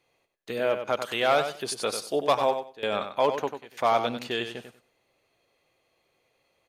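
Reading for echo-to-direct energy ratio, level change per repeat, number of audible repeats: −8.5 dB, −15.0 dB, 2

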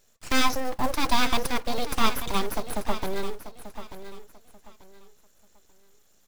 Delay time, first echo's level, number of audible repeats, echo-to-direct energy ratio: 888 ms, −12.0 dB, 3, −11.5 dB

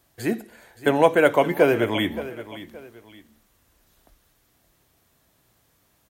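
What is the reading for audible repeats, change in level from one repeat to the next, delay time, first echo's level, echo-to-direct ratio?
2, −9.5 dB, 572 ms, −15.0 dB, −14.5 dB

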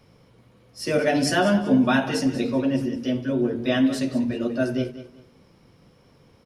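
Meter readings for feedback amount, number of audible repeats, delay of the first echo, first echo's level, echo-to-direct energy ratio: 26%, 2, 191 ms, −14.0 dB, −13.5 dB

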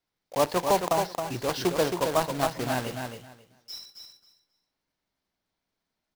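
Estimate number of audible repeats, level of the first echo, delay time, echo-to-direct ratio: 2, −6.0 dB, 270 ms, −6.0 dB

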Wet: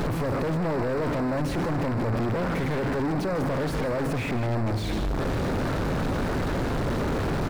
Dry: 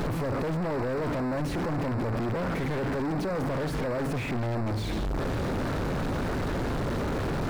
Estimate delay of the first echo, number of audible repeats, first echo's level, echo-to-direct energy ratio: 155 ms, 1, −12.5 dB, −12.5 dB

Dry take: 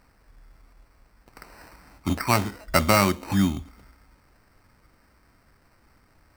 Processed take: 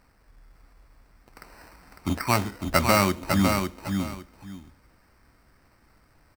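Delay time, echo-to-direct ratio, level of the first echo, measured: 553 ms, −5.0 dB, −5.0 dB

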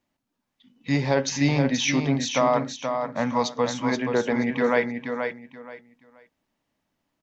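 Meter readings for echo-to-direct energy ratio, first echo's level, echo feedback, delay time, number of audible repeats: −6.0 dB, −6.0 dB, 23%, 478 ms, 3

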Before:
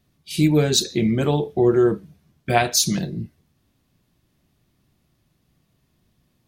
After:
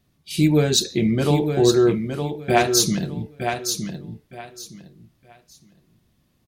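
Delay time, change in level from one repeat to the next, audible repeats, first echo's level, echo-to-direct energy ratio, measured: 915 ms, −13.0 dB, 3, −6.5 dB, −6.5 dB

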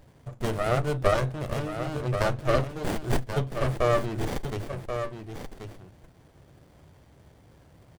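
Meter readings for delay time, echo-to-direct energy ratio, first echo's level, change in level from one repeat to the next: 1,082 ms, −8.0 dB, −8.0 dB, repeats not evenly spaced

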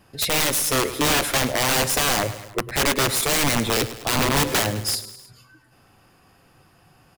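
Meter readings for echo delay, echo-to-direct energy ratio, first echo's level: 104 ms, −12.5 dB, −14.0 dB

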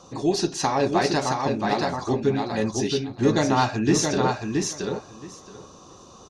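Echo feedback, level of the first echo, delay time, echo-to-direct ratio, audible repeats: 15%, −4.0 dB, 673 ms, −4.0 dB, 2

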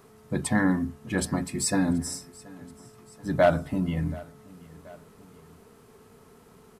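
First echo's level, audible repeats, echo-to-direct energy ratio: −22.0 dB, 2, −21.0 dB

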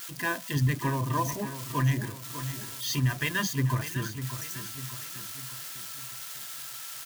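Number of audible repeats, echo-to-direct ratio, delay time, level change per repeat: 4, −9.5 dB, 598 ms, −6.0 dB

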